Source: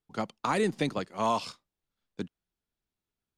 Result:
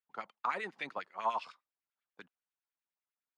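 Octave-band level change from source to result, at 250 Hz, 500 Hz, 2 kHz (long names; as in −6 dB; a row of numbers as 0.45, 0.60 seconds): −21.5, −13.0, −3.5 decibels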